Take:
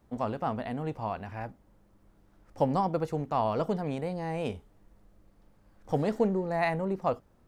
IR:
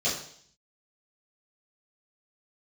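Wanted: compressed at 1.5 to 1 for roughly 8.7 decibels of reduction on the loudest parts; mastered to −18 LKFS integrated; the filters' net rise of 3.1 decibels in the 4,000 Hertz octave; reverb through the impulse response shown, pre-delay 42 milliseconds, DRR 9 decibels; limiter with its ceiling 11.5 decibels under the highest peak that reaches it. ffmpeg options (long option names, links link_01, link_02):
-filter_complex "[0:a]equalizer=frequency=4000:width_type=o:gain=4,acompressor=threshold=-47dB:ratio=1.5,alimiter=level_in=10dB:limit=-24dB:level=0:latency=1,volume=-10dB,asplit=2[link_01][link_02];[1:a]atrim=start_sample=2205,adelay=42[link_03];[link_02][link_03]afir=irnorm=-1:irlink=0,volume=-19dB[link_04];[link_01][link_04]amix=inputs=2:normalize=0,volume=25dB"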